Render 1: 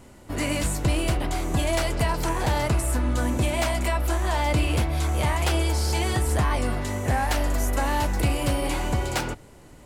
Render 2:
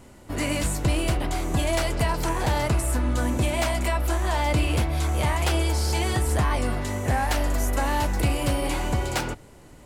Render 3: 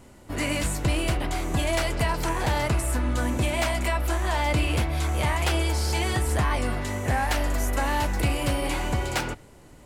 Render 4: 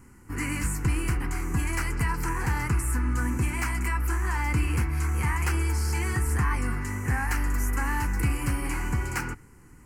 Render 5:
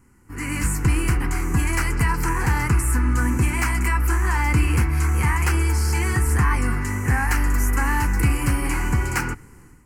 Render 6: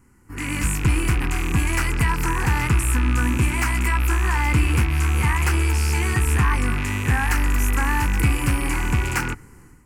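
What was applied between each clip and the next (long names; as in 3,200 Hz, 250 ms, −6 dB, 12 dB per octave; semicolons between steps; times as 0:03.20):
no processing that can be heard
dynamic equaliser 2,100 Hz, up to +3 dB, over −43 dBFS, Q 0.82; level −1.5 dB
phaser with its sweep stopped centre 1,500 Hz, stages 4
automatic gain control gain up to 11.5 dB; level −4.5 dB
loose part that buzzes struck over −29 dBFS, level −19 dBFS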